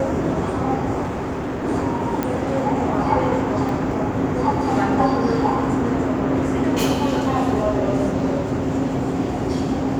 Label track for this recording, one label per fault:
1.030000	1.650000	clipped -22.5 dBFS
2.230000	2.230000	pop -9 dBFS
3.690000	3.690000	dropout 2.3 ms

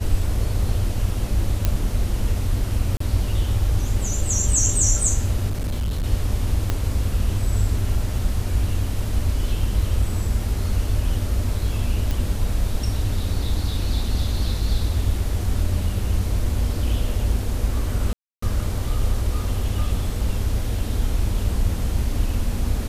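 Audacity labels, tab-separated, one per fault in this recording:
1.650000	1.650000	pop -6 dBFS
2.970000	3.000000	dropout 34 ms
5.490000	6.040000	clipped -20.5 dBFS
6.700000	6.700000	pop -8 dBFS
12.110000	12.110000	pop
18.130000	18.420000	dropout 294 ms

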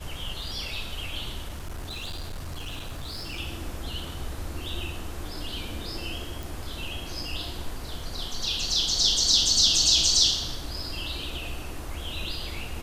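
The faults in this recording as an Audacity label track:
1.480000	3.400000	clipped -31 dBFS
6.430000	6.430000	pop

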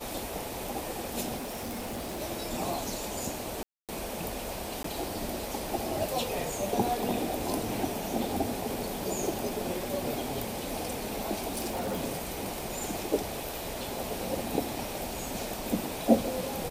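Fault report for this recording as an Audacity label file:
1.360000	2.220000	clipped -33 dBFS
3.630000	3.890000	dropout 257 ms
4.830000	4.840000	dropout 13 ms
11.490000	12.000000	clipped -28.5 dBFS

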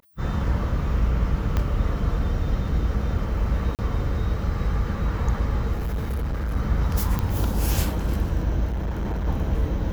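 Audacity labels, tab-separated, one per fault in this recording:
1.570000	1.570000	pop -12 dBFS
2.680000	2.680000	dropout 2.5 ms
3.750000	3.790000	dropout 38 ms
5.750000	6.570000	clipped -23 dBFS
7.190000	7.190000	pop -12 dBFS
8.670000	9.270000	clipped -23 dBFS

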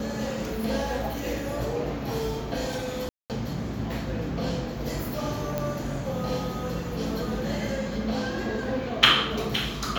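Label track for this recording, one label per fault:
3.090000	3.300000	dropout 208 ms
5.580000	5.580000	pop -14 dBFS

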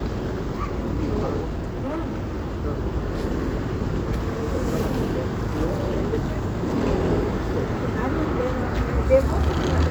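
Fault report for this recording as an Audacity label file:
1.420000	2.630000	clipped -23.5 dBFS

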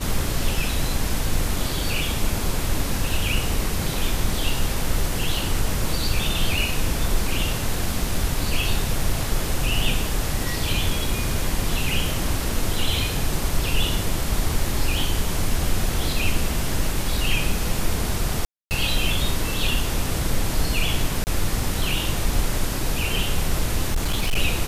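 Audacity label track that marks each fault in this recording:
18.450000	18.710000	dropout 259 ms
21.240000	21.270000	dropout 29 ms
23.910000	24.370000	clipped -17 dBFS

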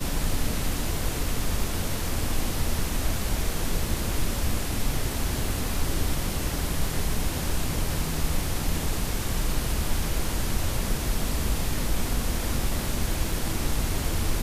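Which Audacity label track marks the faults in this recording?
13.320000	13.320000	dropout 2.1 ms

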